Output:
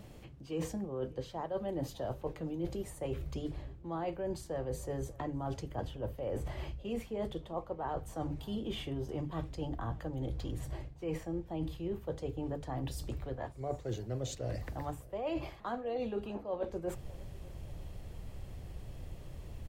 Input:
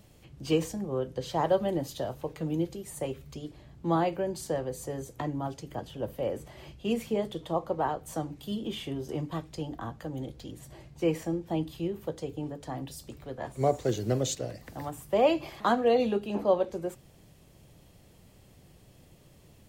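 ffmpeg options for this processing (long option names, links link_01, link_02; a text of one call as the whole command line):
ffmpeg -i in.wav -filter_complex "[0:a]bandreject=frequency=50:width_type=h:width=6,bandreject=frequency=100:width_type=h:width=6,bandreject=frequency=150:width_type=h:width=6,asubboost=boost=5:cutoff=81,areverse,acompressor=threshold=-40dB:ratio=12,areverse,highshelf=frequency=3100:gain=-9,asplit=2[link_01][link_02];[link_02]adelay=595,lowpass=frequency=2600:poles=1,volume=-22.5dB,asplit=2[link_03][link_04];[link_04]adelay=595,lowpass=frequency=2600:poles=1,volume=0.4,asplit=2[link_05][link_06];[link_06]adelay=595,lowpass=frequency=2600:poles=1,volume=0.4[link_07];[link_01][link_03][link_05][link_07]amix=inputs=4:normalize=0,volume=6.5dB" out.wav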